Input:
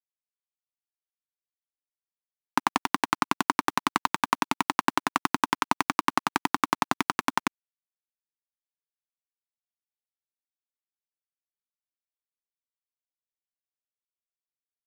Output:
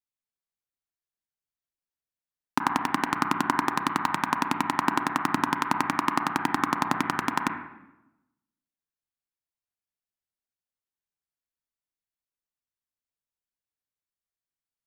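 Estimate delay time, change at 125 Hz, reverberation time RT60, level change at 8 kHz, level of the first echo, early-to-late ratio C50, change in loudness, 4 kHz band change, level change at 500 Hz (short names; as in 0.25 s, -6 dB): none, +5.0 dB, 0.95 s, -2.5 dB, none, 5.0 dB, +0.5 dB, -2.5 dB, 0.0 dB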